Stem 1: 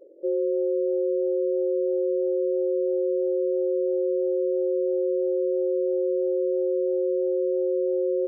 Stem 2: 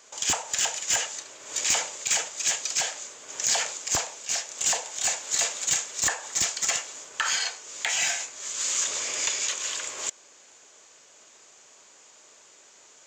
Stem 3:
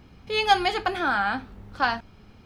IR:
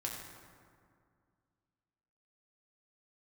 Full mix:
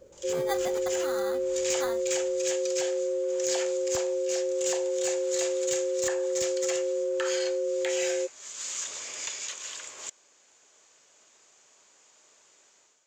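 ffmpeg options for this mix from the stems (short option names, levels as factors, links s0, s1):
-filter_complex "[0:a]highpass=600,volume=1.19[s0];[1:a]dynaudnorm=f=160:g=5:m=3.76,volume=0.126[s1];[2:a]acrusher=samples=16:mix=1:aa=0.000001,volume=0.2,asplit=2[s2][s3];[s3]apad=whole_len=576343[s4];[s1][s4]sidechaincompress=threshold=0.00708:ratio=4:attack=48:release=232[s5];[s0][s5][s2]amix=inputs=3:normalize=0"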